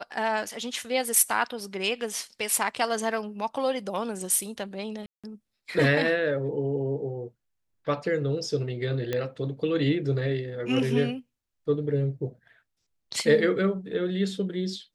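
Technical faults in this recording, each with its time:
5.06–5.24 s: dropout 176 ms
9.13 s: pop -15 dBFS

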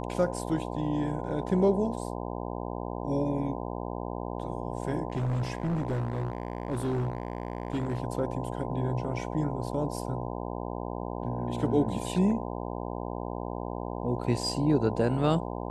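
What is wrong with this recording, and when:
buzz 60 Hz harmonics 17 -35 dBFS
5.10–8.00 s: clipped -25.5 dBFS

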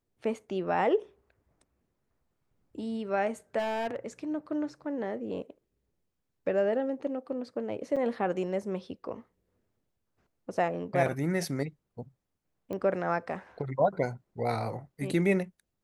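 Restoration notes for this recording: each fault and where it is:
3.58–3.96 s: clipped -27.5 dBFS
7.96–7.97 s: dropout 5.9 ms
12.73 s: pop -25 dBFS

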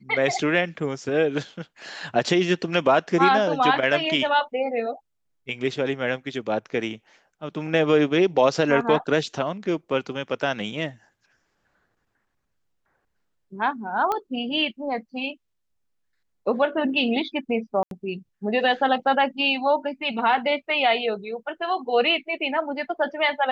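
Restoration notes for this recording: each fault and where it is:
14.12 s: pop -13 dBFS
17.83–17.91 s: dropout 82 ms

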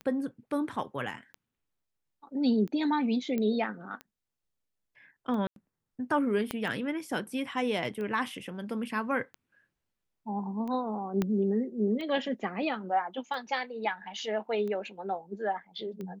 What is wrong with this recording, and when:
tick 45 rpm -28 dBFS
3.38 s: pop -20 dBFS
5.47–5.56 s: dropout 92 ms
6.51 s: pop -16 dBFS
11.22 s: pop -16 dBFS

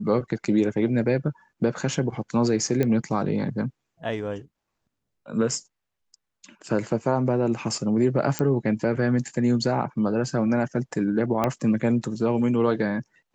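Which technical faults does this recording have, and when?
2.83 s: pop -12 dBFS
8.39 s: pop -9 dBFS
11.44 s: pop -10 dBFS

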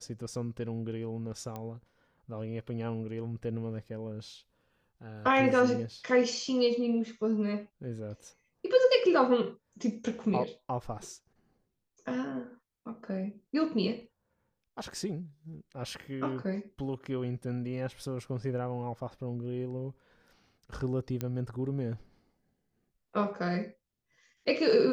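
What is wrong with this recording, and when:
1.56 s: pop -25 dBFS
21.21 s: pop -19 dBFS

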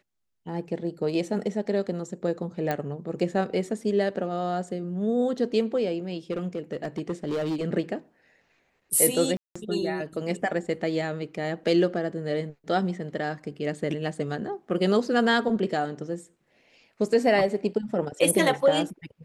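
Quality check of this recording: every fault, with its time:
2.71 s: pop -14 dBFS
6.31–7.65 s: clipped -24 dBFS
9.37–9.55 s: dropout 185 ms

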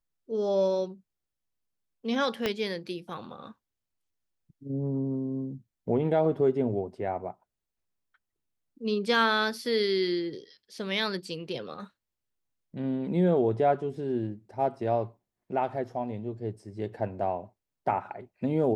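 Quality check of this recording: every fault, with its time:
2.46 s: pop -13 dBFS

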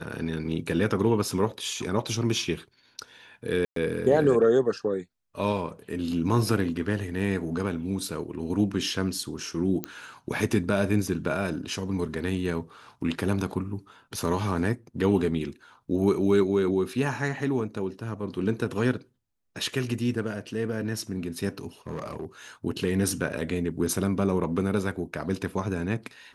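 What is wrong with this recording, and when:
3.65–3.76 s: dropout 113 ms
9.84 s: pop -13 dBFS
21.87–22.25 s: clipped -28.5 dBFS

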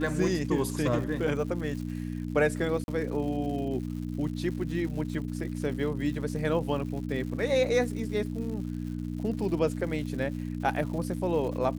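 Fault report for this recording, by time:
crackle 220 per s -39 dBFS
hum 60 Hz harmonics 5 -34 dBFS
2.84–2.88 s: dropout 41 ms

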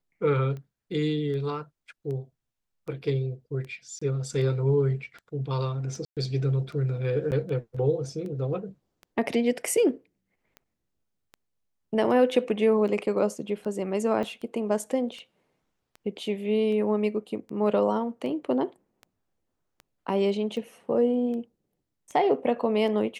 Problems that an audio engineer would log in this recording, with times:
tick 78 rpm -29 dBFS
3.99–4.01 s: dropout 25 ms
6.05–6.17 s: dropout 117 ms
7.31–7.32 s: dropout 9 ms
14.23 s: dropout 2.9 ms

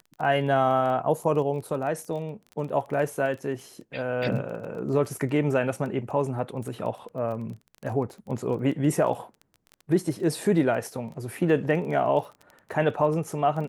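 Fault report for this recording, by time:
crackle 18 per s -34 dBFS

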